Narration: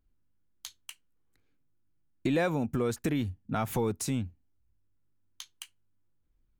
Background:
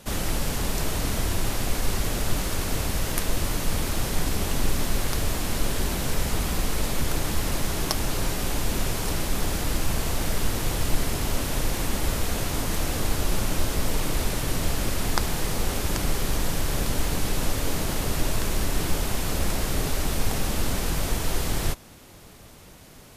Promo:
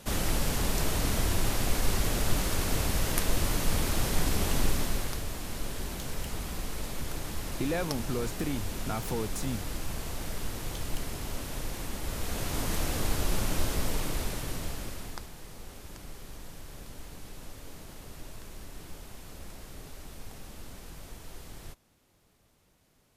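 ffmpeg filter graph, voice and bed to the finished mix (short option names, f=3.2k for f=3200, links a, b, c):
-filter_complex "[0:a]adelay=5350,volume=-4dB[a];[1:a]volume=4dB,afade=t=out:st=4.58:d=0.66:silence=0.398107,afade=t=in:st=12.04:d=0.61:silence=0.501187,afade=t=out:st=13.68:d=1.62:silence=0.16788[b];[a][b]amix=inputs=2:normalize=0"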